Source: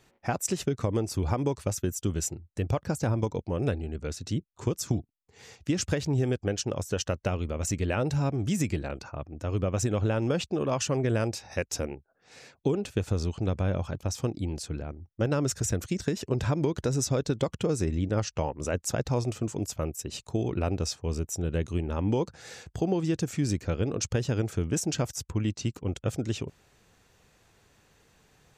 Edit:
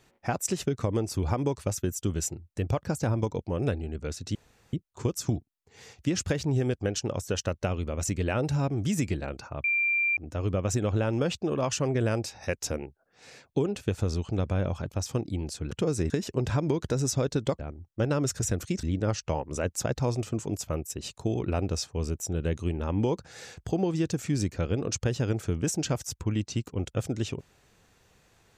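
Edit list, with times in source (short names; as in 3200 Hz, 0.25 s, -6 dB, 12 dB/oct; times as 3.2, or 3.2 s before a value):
4.35 insert room tone 0.38 s
9.26 add tone 2370 Hz -22.5 dBFS 0.53 s
14.8–16.04 swap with 17.53–17.92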